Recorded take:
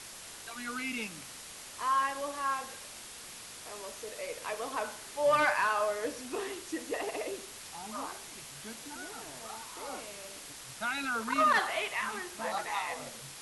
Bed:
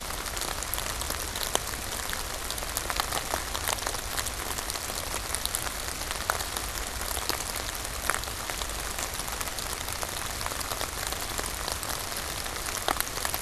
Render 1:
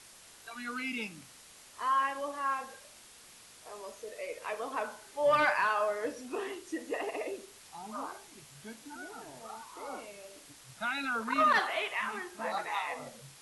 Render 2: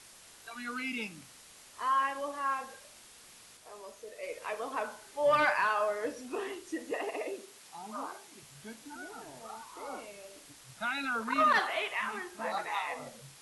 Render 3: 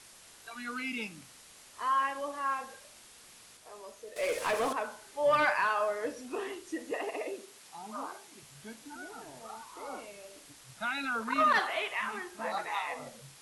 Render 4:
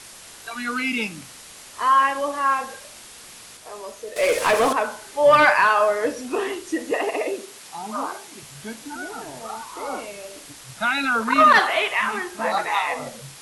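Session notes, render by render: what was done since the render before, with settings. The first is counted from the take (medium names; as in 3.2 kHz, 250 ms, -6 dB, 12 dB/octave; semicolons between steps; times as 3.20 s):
noise print and reduce 8 dB
3.57–4.23 s: gain -3 dB; 6.91–8.43 s: high-pass 150 Hz
4.16–4.73 s: waveshaping leveller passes 3
trim +12 dB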